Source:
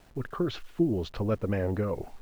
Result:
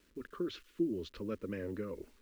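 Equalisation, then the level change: HPF 62 Hz 6 dB/oct; fixed phaser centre 310 Hz, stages 4; -6.5 dB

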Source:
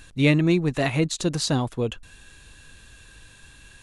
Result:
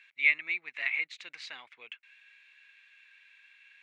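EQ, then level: resonant high-pass 2200 Hz, resonance Q 8.2; tape spacing loss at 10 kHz 24 dB; high shelf 6000 Hz -11.5 dB; -5.0 dB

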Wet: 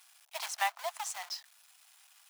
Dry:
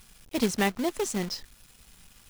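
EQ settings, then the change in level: steep high-pass 660 Hz 72 dB/oct; dynamic EQ 920 Hz, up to +5 dB, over -45 dBFS, Q 1.5; -4.5 dB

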